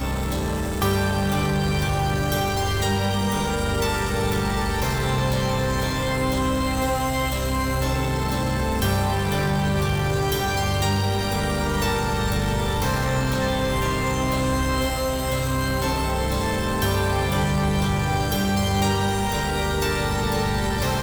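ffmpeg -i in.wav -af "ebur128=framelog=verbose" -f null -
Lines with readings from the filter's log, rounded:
Integrated loudness:
  I:         -23.0 LUFS
  Threshold: -33.0 LUFS
Loudness range:
  LRA:         0.9 LU
  Threshold: -42.9 LUFS
  LRA low:   -23.2 LUFS
  LRA high:  -22.4 LUFS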